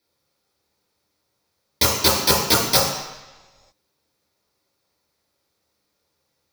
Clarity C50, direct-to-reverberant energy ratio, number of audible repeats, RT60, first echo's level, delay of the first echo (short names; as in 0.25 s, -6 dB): 2.0 dB, -5.5 dB, none, 1.1 s, none, none